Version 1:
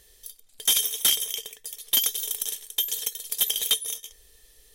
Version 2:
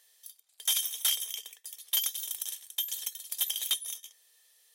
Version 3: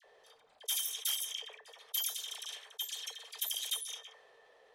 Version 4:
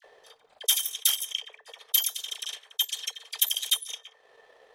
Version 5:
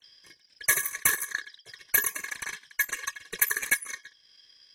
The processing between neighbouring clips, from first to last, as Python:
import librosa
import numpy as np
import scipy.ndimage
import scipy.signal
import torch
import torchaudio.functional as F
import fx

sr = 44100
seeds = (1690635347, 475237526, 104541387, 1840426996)

y1 = scipy.signal.sosfilt(scipy.signal.butter(4, 650.0, 'highpass', fs=sr, output='sos'), x)
y1 = F.gain(torch.from_numpy(y1), -6.5).numpy()
y2 = fx.env_lowpass(y1, sr, base_hz=660.0, full_db=-27.0)
y2 = fx.dispersion(y2, sr, late='lows', ms=47.0, hz=1500.0)
y2 = fx.env_flatten(y2, sr, amount_pct=50)
y2 = F.gain(torch.from_numpy(y2), -7.0).numpy()
y3 = fx.transient(y2, sr, attack_db=8, sustain_db=-10)
y3 = F.gain(torch.from_numpy(y3), 6.0).numpy()
y4 = fx.band_shuffle(y3, sr, order='4321')